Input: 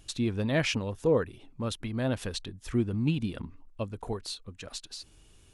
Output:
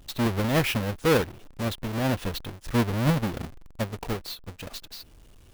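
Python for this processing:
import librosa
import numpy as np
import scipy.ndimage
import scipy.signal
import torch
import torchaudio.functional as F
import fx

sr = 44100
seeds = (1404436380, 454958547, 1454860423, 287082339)

y = fx.halfwave_hold(x, sr)
y = fx.dynamic_eq(y, sr, hz=7500.0, q=0.98, threshold_db=-48.0, ratio=4.0, max_db=-6)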